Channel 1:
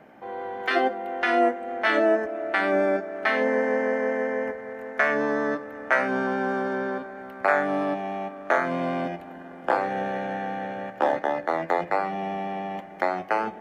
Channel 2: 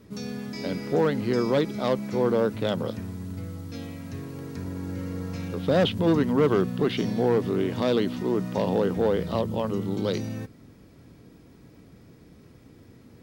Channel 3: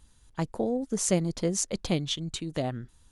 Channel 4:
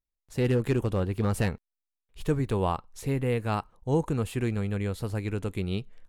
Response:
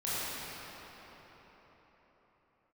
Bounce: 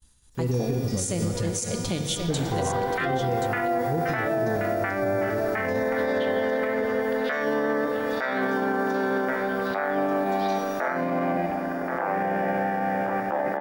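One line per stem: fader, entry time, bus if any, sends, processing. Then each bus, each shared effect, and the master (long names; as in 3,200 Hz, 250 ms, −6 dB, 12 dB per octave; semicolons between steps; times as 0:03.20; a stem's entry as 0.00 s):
−0.5 dB, 2.30 s, no send, echo send −8.5 dB, low-pass filter 2,400 Hz 24 dB per octave; envelope flattener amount 50%
−2.5 dB, 0.35 s, send −4.5 dB, no echo send, spectral tilt +3.5 dB per octave; downward compressor 2.5 to 1, threshold −40 dBFS, peak gain reduction 14 dB; phases set to zero 241 Hz
−2.0 dB, 0.00 s, send −12.5 dB, echo send −8 dB, downward expander −55 dBFS; high-shelf EQ 5,600 Hz +9 dB
−0.5 dB, 0.00 s, send −13.5 dB, no echo send, every bin expanded away from the loudest bin 1.5 to 1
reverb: on, RT60 4.7 s, pre-delay 19 ms
echo: single-tap delay 1,079 ms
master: brickwall limiter −17 dBFS, peak gain reduction 11.5 dB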